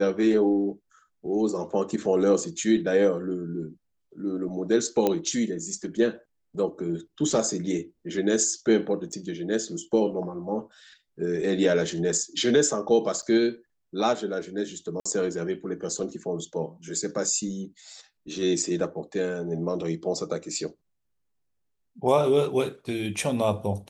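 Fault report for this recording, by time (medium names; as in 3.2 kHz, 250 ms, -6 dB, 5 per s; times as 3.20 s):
5.07 s: pop -10 dBFS
9.12–9.13 s: dropout 6.6 ms
13.22–13.23 s: dropout 7.8 ms
15.00–15.05 s: dropout 55 ms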